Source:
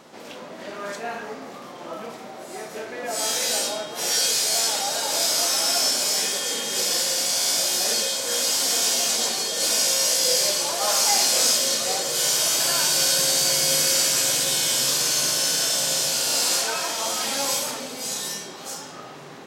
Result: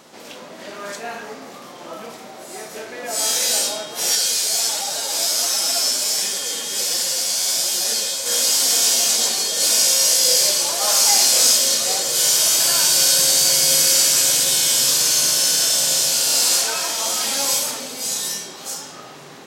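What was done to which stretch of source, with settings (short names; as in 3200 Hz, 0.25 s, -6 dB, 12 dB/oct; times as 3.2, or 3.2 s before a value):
4.15–8.26 flange 1.4 Hz, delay 4.3 ms, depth 8 ms, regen -1%
whole clip: high shelf 3400 Hz +7 dB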